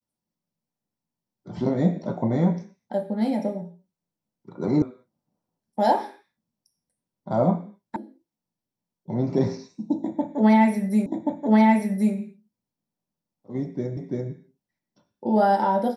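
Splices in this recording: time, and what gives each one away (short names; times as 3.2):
4.82 sound cut off
7.96 sound cut off
11.06 repeat of the last 1.08 s
13.97 repeat of the last 0.34 s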